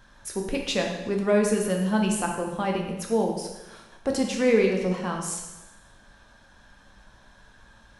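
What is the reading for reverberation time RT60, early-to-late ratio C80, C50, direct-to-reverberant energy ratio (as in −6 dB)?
1.0 s, 6.5 dB, 4.0 dB, 1.0 dB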